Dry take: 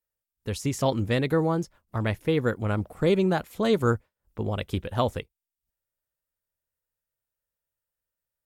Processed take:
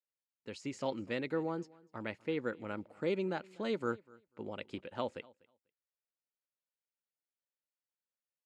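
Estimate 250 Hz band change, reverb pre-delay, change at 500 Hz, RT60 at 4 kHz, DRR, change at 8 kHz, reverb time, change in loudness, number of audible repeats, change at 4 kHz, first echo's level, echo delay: −12.0 dB, no reverb audible, −11.0 dB, no reverb audible, no reverb audible, below −15 dB, no reverb audible, −12.0 dB, 1, −12.0 dB, −24.0 dB, 246 ms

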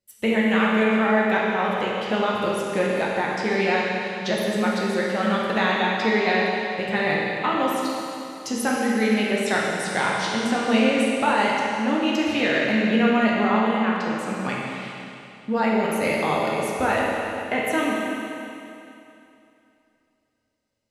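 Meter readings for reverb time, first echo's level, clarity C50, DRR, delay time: 2.8 s, no echo audible, −2.0 dB, −5.0 dB, no echo audible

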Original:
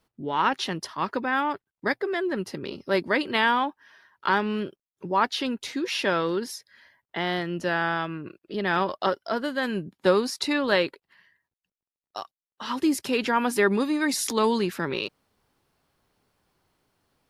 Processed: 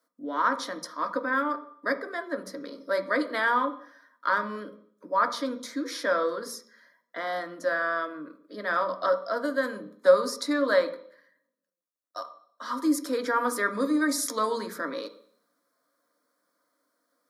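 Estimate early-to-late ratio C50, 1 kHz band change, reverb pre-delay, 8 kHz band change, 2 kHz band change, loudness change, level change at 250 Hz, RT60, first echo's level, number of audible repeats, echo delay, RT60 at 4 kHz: 13.0 dB, −2.0 dB, 3 ms, −1.0 dB, −2.0 dB, −2.0 dB, −3.5 dB, 0.60 s, no echo audible, no echo audible, no echo audible, 0.65 s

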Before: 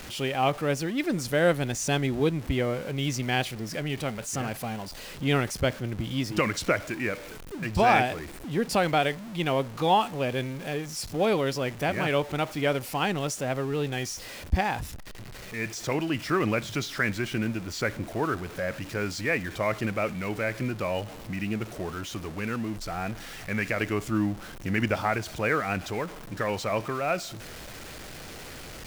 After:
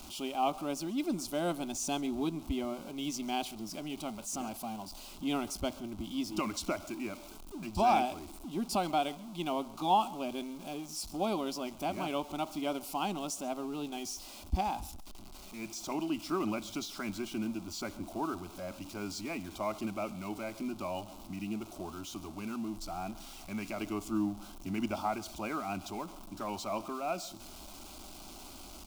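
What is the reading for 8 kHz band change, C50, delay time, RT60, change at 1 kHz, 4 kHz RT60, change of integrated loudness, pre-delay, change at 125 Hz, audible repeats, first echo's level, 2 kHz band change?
−4.5 dB, no reverb audible, 137 ms, no reverb audible, −5.0 dB, no reverb audible, −8.0 dB, no reverb audible, −14.5 dB, 1, −21.0 dB, −15.5 dB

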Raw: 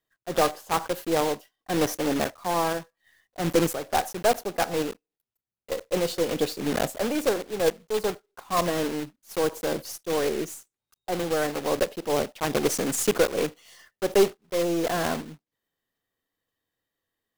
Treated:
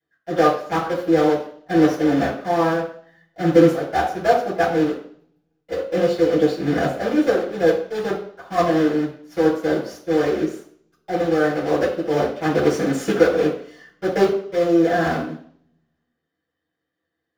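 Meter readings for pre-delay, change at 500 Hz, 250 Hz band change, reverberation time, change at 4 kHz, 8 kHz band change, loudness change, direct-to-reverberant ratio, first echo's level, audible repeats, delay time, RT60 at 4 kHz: 3 ms, +7.0 dB, +10.0 dB, 0.60 s, −1.5 dB, −8.0 dB, +6.5 dB, −12.5 dB, no echo audible, no echo audible, no echo audible, 0.60 s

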